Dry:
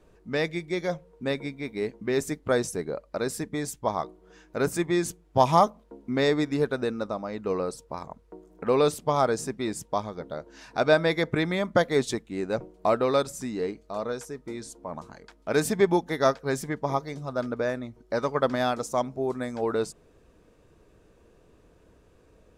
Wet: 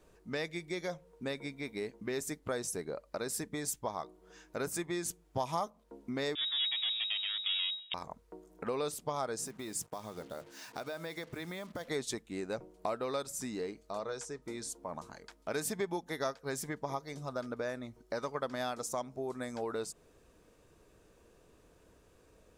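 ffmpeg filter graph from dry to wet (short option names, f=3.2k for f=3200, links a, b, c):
-filter_complex "[0:a]asettb=1/sr,asplit=3[a][b][c];[a]atrim=end=6.354[d];[b]atrim=start=6.35:end=7.94,asetpts=PTS-STARTPTS,afade=t=in:d=0.004:c=qsin,afade=t=out:st=1.586:d=0.004:c=qsin,asplit=2[e][f];[f]highpass=f=720:p=1,volume=14dB,asoftclip=type=tanh:threshold=-12.5dB[g];[e][g]amix=inputs=2:normalize=0,lowpass=f=1.3k:p=1,volume=-6dB,aeval=exprs='max(val(0),0)':c=same,lowpass=f=3.2k:t=q:w=0.5098,lowpass=f=3.2k:t=q:w=0.6013,lowpass=f=3.2k:t=q:w=0.9,lowpass=f=3.2k:t=q:w=2.563,afreqshift=-3800[h];[c]atrim=start=7.936[i];[d][h]acrossfade=d=0.004:c1=hsin:c2=qsin[j];[j][i]acrossfade=d=0.004:c1=qsin:c2=hsin,asettb=1/sr,asplit=3[k][l][m];[k]atrim=end=9.444[n];[l]atrim=start=9.44:end=11.88,asetpts=PTS-STARTPTS,afade=t=in:d=0.004:c=qsin,afade=t=out:st=2.436:d=0.004:c=qsin,acompressor=threshold=-33dB:ratio=6:attack=3.2:release=140:knee=1:detection=peak,bandreject=f=50:t=h:w=6,bandreject=f=100:t=h:w=6,bandreject=f=150:t=h:w=6,acrusher=bits=8:mix=0:aa=0.5[o];[m]atrim=start=11.876[p];[n][o]acrossfade=d=0.004:c1=hsin:c2=qsin[q];[q][p]acrossfade=d=0.004:c1=qsin:c2=hsin,asettb=1/sr,asplit=3[r][s][t];[r]atrim=end=13.994[u];[s]atrim=start=13.99:end=14.42,asetpts=PTS-STARTPTS,afade=t=in:d=0.004:c=qsin,afade=t=out:st=0.426:d=0.004:c=qsin,lowpass=f=8.4k:w=0.5412,lowpass=f=8.4k:w=1.3066,bandreject=f=240:w=6.7[v];[t]atrim=start=14.416[w];[u][v]acrossfade=d=0.004:c1=hsin:c2=qsin[x];[x][w]acrossfade=d=0.004:c1=qsin:c2=hsin,equalizer=f=1k:w=0.43:g=3,acompressor=threshold=-30dB:ratio=2.5,highshelf=f=4.1k:g=11,volume=-6.5dB"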